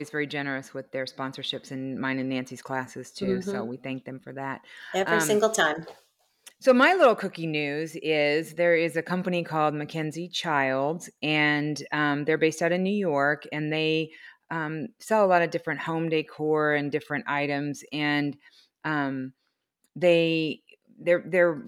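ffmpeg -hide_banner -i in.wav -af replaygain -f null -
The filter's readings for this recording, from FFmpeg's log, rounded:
track_gain = +5.7 dB
track_peak = 0.306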